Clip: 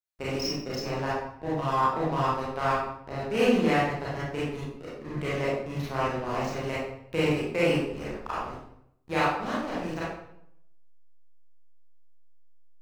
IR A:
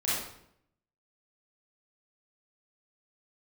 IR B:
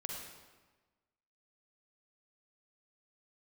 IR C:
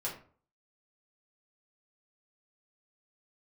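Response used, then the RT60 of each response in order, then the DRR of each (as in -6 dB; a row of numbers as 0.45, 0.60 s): A; 0.70, 1.3, 0.45 s; -9.5, -0.5, -6.0 dB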